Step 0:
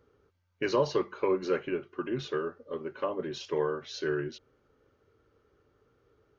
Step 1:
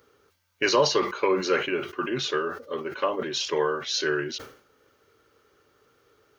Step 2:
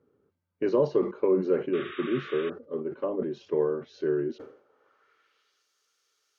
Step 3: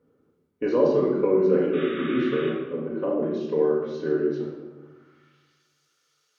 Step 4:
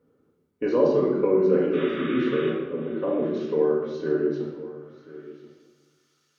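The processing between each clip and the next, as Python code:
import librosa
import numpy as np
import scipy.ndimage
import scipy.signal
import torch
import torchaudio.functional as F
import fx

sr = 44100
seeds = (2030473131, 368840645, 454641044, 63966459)

y1 = fx.tilt_eq(x, sr, slope=3.0)
y1 = fx.sustainer(y1, sr, db_per_s=110.0)
y1 = F.gain(torch.from_numpy(y1), 7.5).numpy()
y2 = fx.spec_paint(y1, sr, seeds[0], shape='noise', start_s=1.73, length_s=0.77, low_hz=1100.0, high_hz=3800.0, level_db=-22.0)
y2 = fx.filter_sweep_bandpass(y2, sr, from_hz=200.0, to_hz=6200.0, start_s=4.19, end_s=5.68, q=1.3)
y2 = fx.dynamic_eq(y2, sr, hz=470.0, q=0.81, threshold_db=-43.0, ratio=4.0, max_db=6)
y2 = F.gain(torch.from_numpy(y2), 2.0).numpy()
y3 = fx.room_shoebox(y2, sr, seeds[1], volume_m3=640.0, walls='mixed', distance_m=1.9)
y4 = y3 + 10.0 ** (-17.5 / 20.0) * np.pad(y3, (int(1034 * sr / 1000.0), 0))[:len(y3)]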